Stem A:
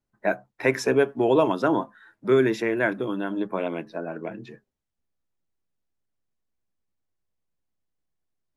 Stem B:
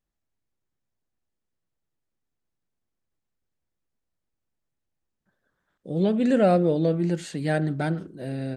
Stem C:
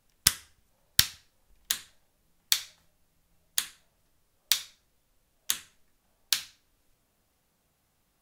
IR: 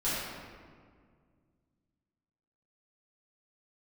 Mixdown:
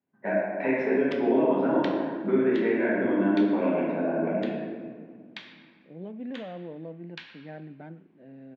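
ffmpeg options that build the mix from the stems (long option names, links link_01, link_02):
-filter_complex "[0:a]acompressor=threshold=-27dB:ratio=5,volume=-0.5dB,asplit=2[link_01][link_02];[link_02]volume=-3.5dB[link_03];[1:a]volume=-13dB[link_04];[2:a]acompressor=threshold=-38dB:ratio=1.5,adelay=850,volume=0dB,asplit=2[link_05][link_06];[link_06]volume=-10dB[link_07];[link_01][link_04]amix=inputs=2:normalize=0,aeval=exprs='(tanh(12.6*val(0)+0.7)-tanh(0.7))/12.6':channel_layout=same,alimiter=level_in=5.5dB:limit=-24dB:level=0:latency=1,volume=-5.5dB,volume=0dB[link_08];[3:a]atrim=start_sample=2205[link_09];[link_03][link_07]amix=inputs=2:normalize=0[link_10];[link_10][link_09]afir=irnorm=-1:irlink=0[link_11];[link_05][link_08][link_11]amix=inputs=3:normalize=0,highpass=frequency=120:width=0.5412,highpass=frequency=120:width=1.3066,equalizer=frequency=120:width_type=q:width=4:gain=-8,equalizer=frequency=260:width_type=q:width=4:gain=4,equalizer=frequency=1300:width_type=q:width=4:gain=-7,lowpass=frequency=2600:width=0.5412,lowpass=frequency=2600:width=1.3066"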